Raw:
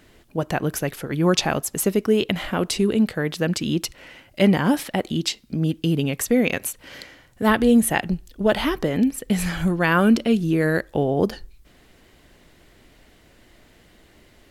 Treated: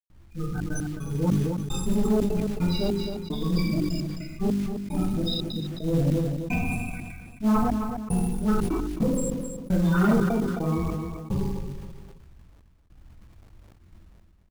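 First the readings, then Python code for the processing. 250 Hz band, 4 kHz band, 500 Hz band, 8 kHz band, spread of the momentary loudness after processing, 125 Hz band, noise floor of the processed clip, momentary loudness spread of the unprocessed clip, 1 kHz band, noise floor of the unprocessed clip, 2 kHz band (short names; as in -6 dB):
-4.0 dB, -8.0 dB, -7.5 dB, -10.5 dB, 10 LU, -0.5 dB, -54 dBFS, 10 LU, -6.5 dB, -55 dBFS, -11.5 dB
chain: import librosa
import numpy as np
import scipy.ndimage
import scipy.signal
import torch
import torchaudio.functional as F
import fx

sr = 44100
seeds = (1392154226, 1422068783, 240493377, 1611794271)

y = fx.lower_of_two(x, sr, delay_ms=0.81)
y = fx.spec_topn(y, sr, count=8)
y = fx.env_lowpass(y, sr, base_hz=2500.0, full_db=-20.5)
y = fx.graphic_eq(y, sr, hz=(250, 1000, 2000, 8000), db=(-12, -12, 3, 4))
y = fx.rev_plate(y, sr, seeds[0], rt60_s=1.3, hf_ratio=0.95, predelay_ms=0, drr_db=-8.0)
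y = fx.step_gate(y, sr, bpm=150, pattern='.xxxxx.x..xxx...', floor_db=-60.0, edge_ms=4.5)
y = fx.high_shelf(y, sr, hz=3100.0, db=-7.5)
y = 10.0 ** (-15.0 / 20.0) * np.tanh(y / 10.0 ** (-15.0 / 20.0))
y = fx.hum_notches(y, sr, base_hz=50, count=8)
y = fx.quant_companded(y, sr, bits=6)
y = fx.echo_feedback(y, sr, ms=264, feedback_pct=28, wet_db=-18.0)
y = fx.sustainer(y, sr, db_per_s=30.0)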